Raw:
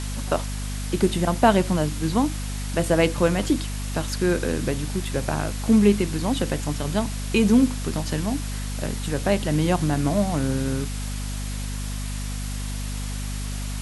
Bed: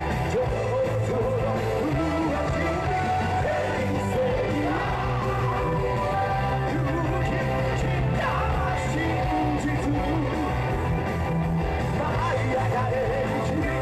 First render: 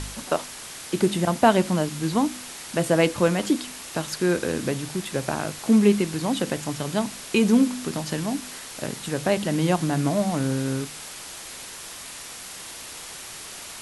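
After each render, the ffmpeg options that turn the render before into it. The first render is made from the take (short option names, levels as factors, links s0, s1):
-af "bandreject=f=50:t=h:w=4,bandreject=f=100:t=h:w=4,bandreject=f=150:t=h:w=4,bandreject=f=200:t=h:w=4,bandreject=f=250:t=h:w=4"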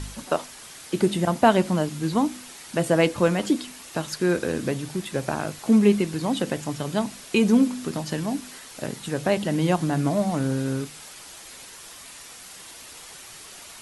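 -af "afftdn=nr=6:nf=-39"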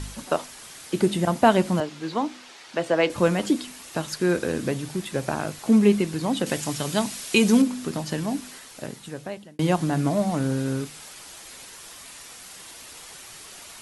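-filter_complex "[0:a]asettb=1/sr,asplit=3[s0][s1][s2];[s0]atrim=end=1.804[s3];[s1]atrim=start=1.8:end=3.1,asetpts=PTS-STARTPTS,afade=t=in:d=0.004:c=qsin,afade=t=out:st=1.296:d=0.004:c=qsin,acrossover=split=310 6000:gain=0.224 1 0.126[s4][s5][s6];[s4][s5][s6]amix=inputs=3:normalize=0[s7];[s2]atrim=start=3.096[s8];[s3][s7]acrossfade=d=0.004:c1=hsin:c2=qsin[s9];[s9][s8]acrossfade=d=0.004:c1=qsin:c2=hsin,asettb=1/sr,asplit=3[s10][s11][s12];[s10]atrim=end=6.464[s13];[s11]atrim=start=6.46:end=7.62,asetpts=PTS-STARTPTS,afade=t=in:d=0.004:c=qsin,afade=t=out:st=1.156:d=0.004:c=qsin,highshelf=f=2100:g=8.5[s14];[s12]atrim=start=7.616[s15];[s13][s14]acrossfade=d=0.004:c1=hsin:c2=qsin[s16];[s16][s15]acrossfade=d=0.004:c1=qsin:c2=hsin,asplit=2[s17][s18];[s17]atrim=end=9.59,asetpts=PTS-STARTPTS,afade=t=out:st=8.46:d=1.13[s19];[s18]atrim=start=9.59,asetpts=PTS-STARTPTS,afade=t=in:d=0.004:c=hsin[s20];[s19][s20]concat=n=2:v=0:a=1"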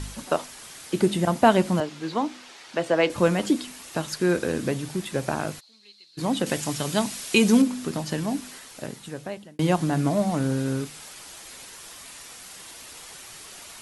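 -filter_complex "[0:a]asplit=3[s0][s1][s2];[s0]afade=t=out:st=5.59:d=0.02[s3];[s1]bandpass=f=4200:t=q:w=13,afade=t=in:st=5.59:d=0.02,afade=t=out:st=6.17:d=0.02[s4];[s2]afade=t=in:st=6.17:d=0.02[s5];[s3][s4][s5]amix=inputs=3:normalize=0"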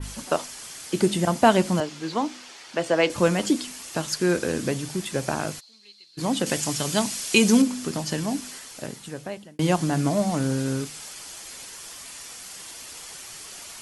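-af "bandreject=f=3800:w=20,adynamicequalizer=threshold=0.00447:dfrequency=6300:dqfactor=0.71:tfrequency=6300:tqfactor=0.71:attack=5:release=100:ratio=0.375:range=3:mode=boostabove:tftype=bell"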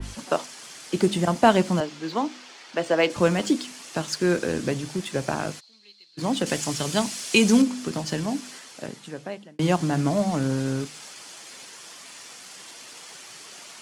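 -filter_complex "[0:a]acrossover=split=120[s0][s1];[s0]acrusher=bits=6:mix=0:aa=0.5[s2];[s1]adynamicsmooth=sensitivity=6.5:basefreq=7100[s3];[s2][s3]amix=inputs=2:normalize=0"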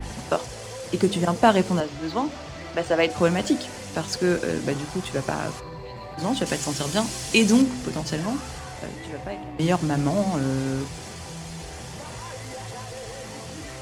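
-filter_complex "[1:a]volume=0.224[s0];[0:a][s0]amix=inputs=2:normalize=0"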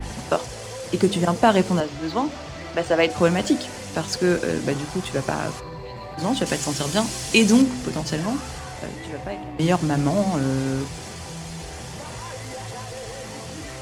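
-af "volume=1.26,alimiter=limit=0.708:level=0:latency=1"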